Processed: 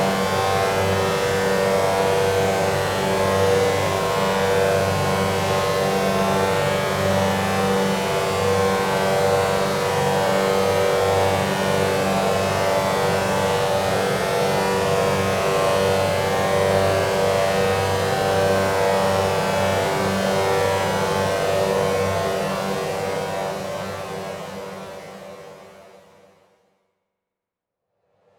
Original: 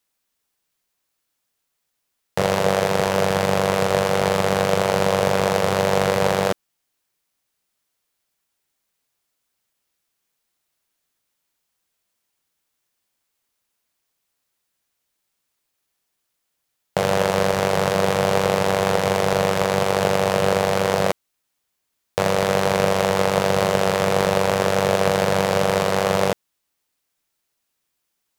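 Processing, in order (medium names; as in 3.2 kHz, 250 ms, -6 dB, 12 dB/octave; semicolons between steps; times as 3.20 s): level-controlled noise filter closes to 750 Hz, open at -18.5 dBFS; Paulstretch 9.7×, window 1.00 s, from 18.82 s; spring tank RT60 2.5 s, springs 42 ms, chirp 75 ms, DRR 14.5 dB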